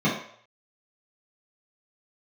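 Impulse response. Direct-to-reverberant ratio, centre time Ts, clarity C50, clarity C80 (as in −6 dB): −10.0 dB, 36 ms, 4.5 dB, 8.5 dB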